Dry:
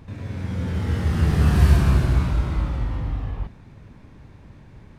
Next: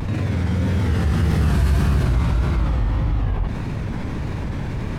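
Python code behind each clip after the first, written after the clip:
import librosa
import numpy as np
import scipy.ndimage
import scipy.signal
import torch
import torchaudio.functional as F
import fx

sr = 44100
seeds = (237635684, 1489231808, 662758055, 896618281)

y = fx.vibrato(x, sr, rate_hz=1.7, depth_cents=94.0)
y = fx.env_flatten(y, sr, amount_pct=70)
y = F.gain(torch.from_numpy(y), -4.5).numpy()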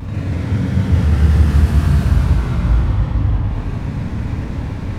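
y = fx.peak_eq(x, sr, hz=100.0, db=5.0, octaves=1.6)
y = fx.doubler(y, sr, ms=40.0, db=-11.5)
y = fx.rev_gated(y, sr, seeds[0], gate_ms=420, shape='flat', drr_db=-4.5)
y = F.gain(torch.from_numpy(y), -5.5).numpy()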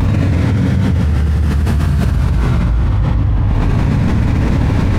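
y = fx.env_flatten(x, sr, amount_pct=100)
y = F.gain(torch.from_numpy(y), -5.5).numpy()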